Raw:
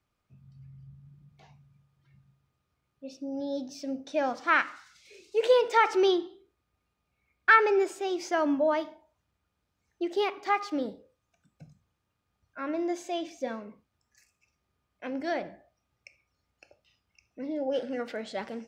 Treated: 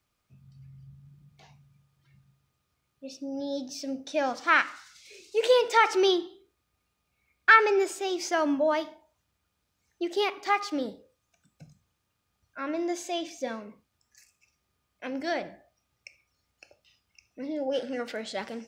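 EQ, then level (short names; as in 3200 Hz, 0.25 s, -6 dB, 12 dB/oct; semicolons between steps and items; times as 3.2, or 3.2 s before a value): high shelf 2700 Hz +8 dB; 0.0 dB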